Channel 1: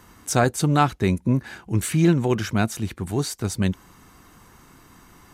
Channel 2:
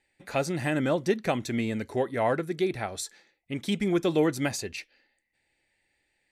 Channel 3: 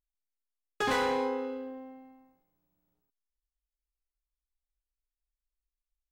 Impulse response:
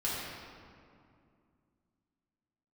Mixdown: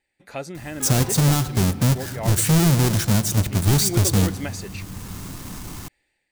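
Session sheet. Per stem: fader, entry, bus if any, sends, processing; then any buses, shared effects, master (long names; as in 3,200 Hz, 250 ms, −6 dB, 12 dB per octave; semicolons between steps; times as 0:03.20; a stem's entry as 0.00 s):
−2.0 dB, 0.55 s, send −22.5 dB, each half-wave held at its own peak; bass and treble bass +7 dB, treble +11 dB
−3.5 dB, 0.00 s, no send, no processing
−6.5 dB, 0.00 s, no send, no processing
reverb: on, RT60 2.4 s, pre-delay 3 ms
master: automatic gain control gain up to 7 dB; brickwall limiter −9 dBFS, peak gain reduction 8 dB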